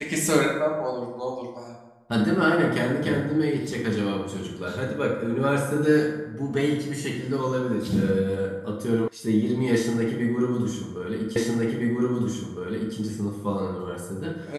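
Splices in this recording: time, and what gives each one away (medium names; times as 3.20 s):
9.08 s: sound stops dead
11.36 s: repeat of the last 1.61 s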